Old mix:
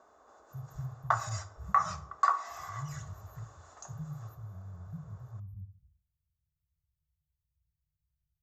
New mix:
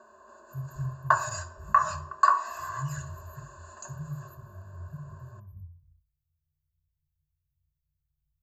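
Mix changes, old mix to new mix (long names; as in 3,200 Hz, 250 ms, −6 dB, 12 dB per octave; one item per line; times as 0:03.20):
background: send +7.5 dB
master: add EQ curve with evenly spaced ripples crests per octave 1.4, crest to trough 17 dB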